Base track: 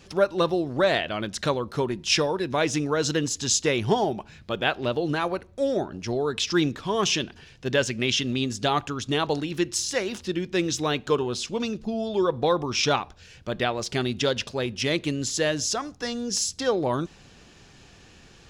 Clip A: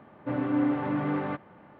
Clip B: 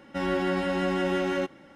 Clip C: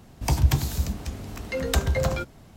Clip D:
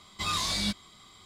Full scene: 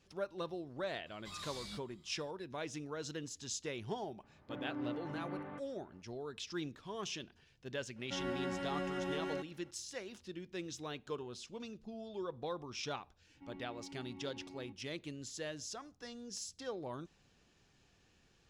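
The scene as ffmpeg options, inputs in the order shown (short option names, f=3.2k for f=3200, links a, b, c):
-filter_complex "[2:a]asplit=2[a][b];[0:a]volume=-18.5dB[c];[b]asplit=3[d][e][f];[d]bandpass=f=300:t=q:w=8,volume=0dB[g];[e]bandpass=f=870:t=q:w=8,volume=-6dB[h];[f]bandpass=f=2.24k:t=q:w=8,volume=-9dB[i];[g][h][i]amix=inputs=3:normalize=0[j];[4:a]atrim=end=1.25,asetpts=PTS-STARTPTS,volume=-18dB,afade=t=in:d=0.004:c=hsin,afade=t=out:st=1.246:d=0.004:c=hsin,adelay=1060[k];[1:a]atrim=end=1.79,asetpts=PTS-STARTPTS,volume=-15.5dB,afade=t=in:d=0.004:c=hsin,afade=t=out:st=1.786:d=0.004:c=hsin,adelay=4230[l];[a]atrim=end=1.75,asetpts=PTS-STARTPTS,volume=-12.5dB,afade=t=in:d=0.004:c=hsin,afade=t=out:st=1.746:d=0.004:c=hsin,adelay=7960[m];[j]atrim=end=1.75,asetpts=PTS-STARTPTS,volume=-15dB,afade=t=in:d=0.004:c=hsin,afade=t=out:st=1.746:d=0.004:c=hsin,adelay=13260[n];[c][k][l][m][n]amix=inputs=5:normalize=0"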